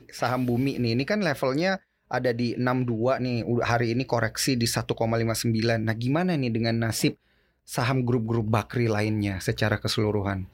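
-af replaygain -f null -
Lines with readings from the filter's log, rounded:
track_gain = +7.8 dB
track_peak = 0.304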